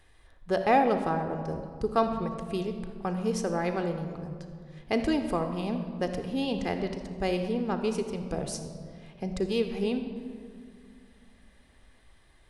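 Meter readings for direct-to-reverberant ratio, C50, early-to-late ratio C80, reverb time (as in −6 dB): 6.5 dB, 7.5 dB, 8.5 dB, 2.3 s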